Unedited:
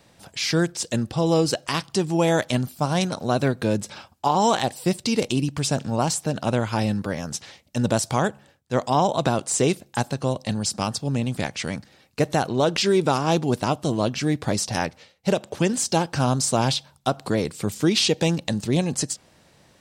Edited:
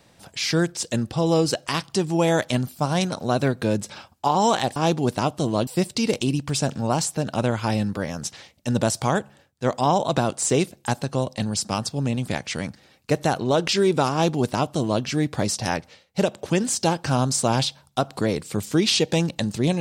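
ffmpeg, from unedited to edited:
-filter_complex "[0:a]asplit=3[a][b][c];[a]atrim=end=4.762[d];[b]atrim=start=13.208:end=14.122[e];[c]atrim=start=4.758[f];[d][e]acrossfade=d=0.004:c1=hsin:c2=hsin[g];[g][f]acrossfade=d=0.004:c1=hsin:c2=hsin"

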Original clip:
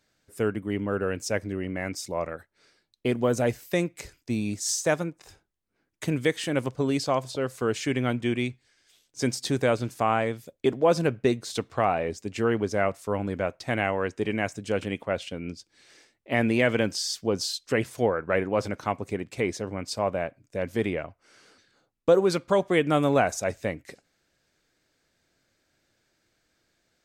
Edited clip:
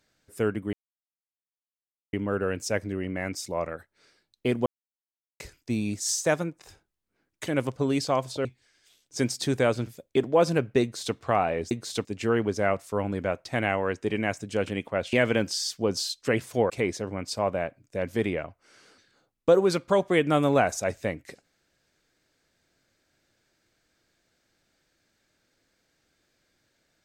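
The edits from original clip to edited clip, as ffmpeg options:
-filter_complex "[0:a]asplit=11[a][b][c][d][e][f][g][h][i][j][k];[a]atrim=end=0.73,asetpts=PTS-STARTPTS,afade=t=out:st=0.726:d=0.004:c=hsin,apad=pad_dur=1.4[l];[b]atrim=start=0.73:end=3.26,asetpts=PTS-STARTPTS,afade=t=in:d=0.004:c=hsin,afade=t=out:st=2.526:d=0.004:c=hsin[m];[c]atrim=start=3.26:end=4,asetpts=PTS-STARTPTS,volume=0[n];[d]atrim=start=4:end=6.072,asetpts=PTS-STARTPTS,afade=t=in:d=0.004:c=hsin[o];[e]atrim=start=6.458:end=7.442[p];[f]atrim=start=8.478:end=9.902[q];[g]atrim=start=10.358:end=12.202[r];[h]atrim=start=11.308:end=11.652[s];[i]atrim=start=12.198:end=15.282[t];[j]atrim=start=16.568:end=18.142[u];[k]atrim=start=19.298[v];[l][m][n][o]concat=n=4:v=0:a=1[w];[w][p]acrossfade=d=0.004:c1=hsin:c2=hsin[x];[x][q]acrossfade=d=0.004:c1=hsin:c2=hsin[y];[y][r]acrossfade=d=0.004:c1=hsin:c2=hsin[z];[z][s]acrossfade=d=0.004:c1=hsin:c2=hsin[aa];[aa][t]acrossfade=d=0.004:c1=hsin:c2=hsin[ab];[ab][u]acrossfade=d=0.004:c1=hsin:c2=hsin[ac];[ac][v]acrossfade=d=0.004:c1=hsin:c2=hsin"

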